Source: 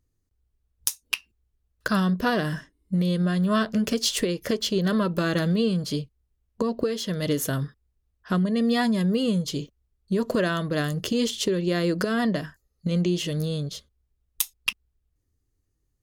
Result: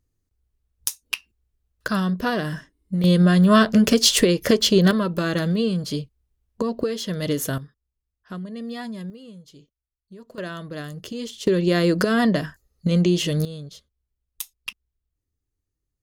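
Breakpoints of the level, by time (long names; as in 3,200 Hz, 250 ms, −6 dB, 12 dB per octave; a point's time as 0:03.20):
0 dB
from 0:03.04 +8 dB
from 0:04.91 +1 dB
from 0:07.58 −10 dB
from 0:09.10 −19 dB
from 0:10.38 −7.5 dB
from 0:11.47 +5 dB
from 0:13.45 −7 dB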